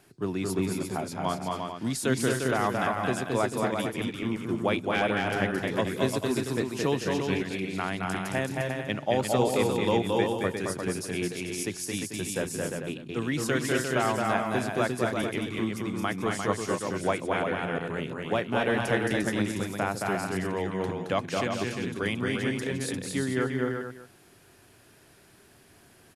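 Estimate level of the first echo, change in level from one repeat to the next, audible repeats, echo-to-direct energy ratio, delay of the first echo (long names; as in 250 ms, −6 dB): −3.0 dB, repeats not evenly spaced, 5, 0.5 dB, 220 ms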